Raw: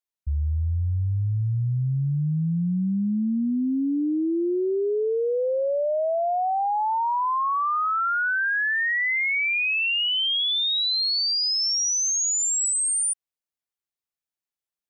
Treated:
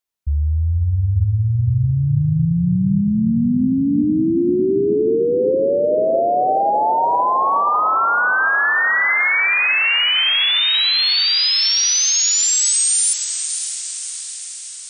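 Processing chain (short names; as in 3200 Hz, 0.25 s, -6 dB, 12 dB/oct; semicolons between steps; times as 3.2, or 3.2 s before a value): diffused feedback echo 0.559 s, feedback 61%, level -8 dB; gain +6.5 dB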